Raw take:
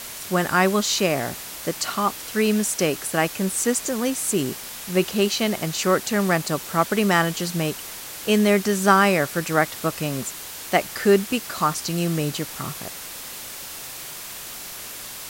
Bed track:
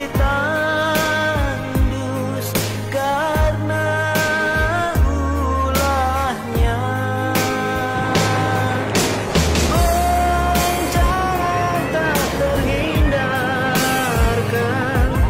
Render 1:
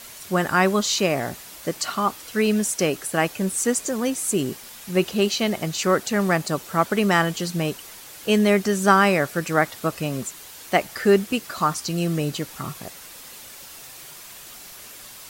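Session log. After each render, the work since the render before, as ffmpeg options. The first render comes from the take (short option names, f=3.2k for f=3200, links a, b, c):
-af "afftdn=nr=7:nf=-36"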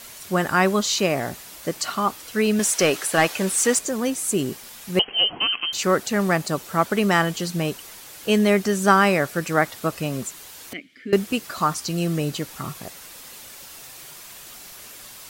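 -filter_complex "[0:a]asettb=1/sr,asplit=3[a][b][c];[a]atrim=end=2.594[d];[b]atrim=start=2.59:end=3.79,asetpts=PTS-STARTPTS,afade=t=in:d=0.004:c=qsin,afade=t=out:st=1.196:d=0.004:c=qsin,asplit=2[e][f];[f]highpass=f=720:p=1,volume=14dB,asoftclip=type=tanh:threshold=-7dB[g];[e][g]amix=inputs=2:normalize=0,lowpass=f=6.4k:p=1,volume=-6dB[h];[c]atrim=start=3.786[i];[d][h]acrossfade=d=0.004:c1=hsin:c2=qsin[j];[j][i]acrossfade=d=0.004:c1=qsin:c2=hsin,asettb=1/sr,asplit=3[k][l][m];[k]atrim=end=4.994[n];[l]atrim=start=4.99:end=5.73,asetpts=PTS-STARTPTS,afade=t=in:d=0.004:c=qsin,afade=t=out:st=0.736:d=0.004:c=qsin,lowpass=f=2.8k:t=q:w=0.5098,lowpass=f=2.8k:t=q:w=0.6013,lowpass=f=2.8k:t=q:w=0.9,lowpass=f=2.8k:t=q:w=2.563,afreqshift=-3300[o];[m]atrim=start=5.726[p];[n][o]acrossfade=d=0.004:c1=hsin:c2=qsin[q];[q][p]acrossfade=d=0.004:c1=qsin:c2=hsin,asettb=1/sr,asplit=3[r][s][t];[r]atrim=end=10.734[u];[s]atrim=start=10.73:end=11.13,asetpts=PTS-STARTPTS,afade=t=in:d=0.004:c=qsin,afade=t=out:st=0.396:d=0.004:c=qsin,asplit=3[v][w][x];[v]bandpass=f=270:t=q:w=8,volume=0dB[y];[w]bandpass=f=2.29k:t=q:w=8,volume=-6dB[z];[x]bandpass=f=3.01k:t=q:w=8,volume=-9dB[aa];[y][z][aa]amix=inputs=3:normalize=0[ab];[t]atrim=start=11.126[ac];[u][ab]acrossfade=d=0.004:c1=hsin:c2=qsin[ad];[ad][ac]acrossfade=d=0.004:c1=qsin:c2=hsin"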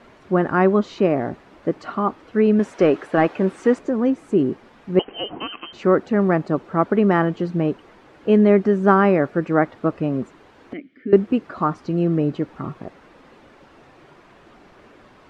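-af "lowpass=1.5k,equalizer=f=310:t=o:w=1.3:g=7.5"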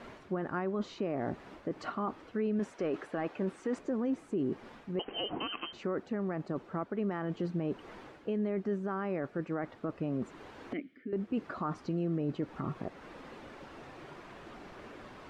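-af "areverse,acompressor=threshold=-25dB:ratio=5,areverse,alimiter=level_in=1dB:limit=-24dB:level=0:latency=1:release=217,volume=-1dB"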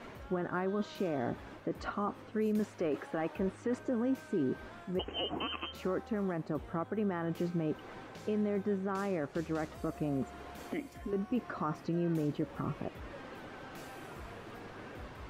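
-filter_complex "[1:a]volume=-34dB[a];[0:a][a]amix=inputs=2:normalize=0"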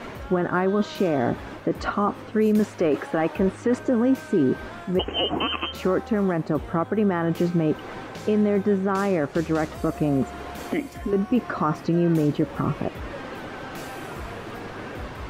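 -af "volume=12dB"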